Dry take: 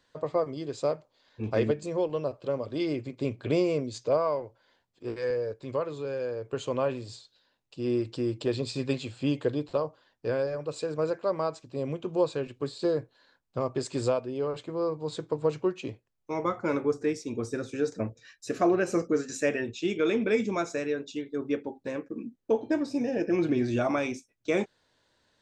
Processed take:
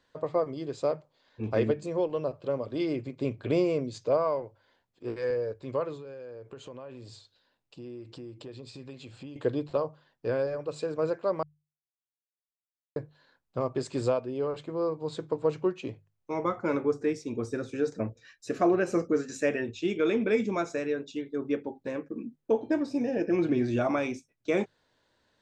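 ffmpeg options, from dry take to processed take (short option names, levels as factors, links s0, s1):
-filter_complex "[0:a]asettb=1/sr,asplit=3[s0][s1][s2];[s0]atrim=end=5.964[s3];[s1]atrim=start=5.96:end=9.36,asetpts=PTS-STARTPTS,afade=t=in:d=0.004:c=qsin,afade=t=out:st=3.396:d=0.004:c=qsin,acompressor=threshold=0.00891:ratio=5:attack=3.2:release=140:knee=1:detection=peak[s4];[s2]atrim=start=9.356[s5];[s3][s4]acrossfade=d=0.004:c1=hsin:c2=qsin[s6];[s6][s5]acrossfade=d=0.004:c1=qsin:c2=hsin,asplit=3[s7][s8][s9];[s7]atrim=end=11.43,asetpts=PTS-STARTPTS,afade=t=out:st=11.426:d=0.004:c=hsin[s10];[s8]atrim=start=11.43:end=12.96,asetpts=PTS-STARTPTS,volume=0[s11];[s9]atrim=start=12.96,asetpts=PTS-STARTPTS,afade=t=in:d=0.004:c=hsin[s12];[s10][s11][s12]concat=n=3:v=0:a=1,highshelf=f=3900:g=-6,bandreject=f=50:t=h:w=6,bandreject=f=100:t=h:w=6,bandreject=f=150:t=h:w=6"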